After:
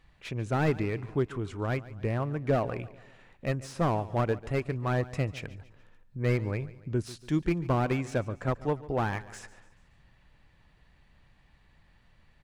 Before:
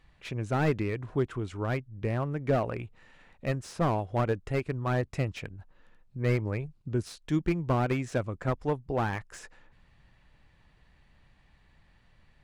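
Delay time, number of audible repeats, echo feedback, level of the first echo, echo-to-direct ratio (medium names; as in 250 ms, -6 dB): 143 ms, 3, 46%, -18.0 dB, -17.0 dB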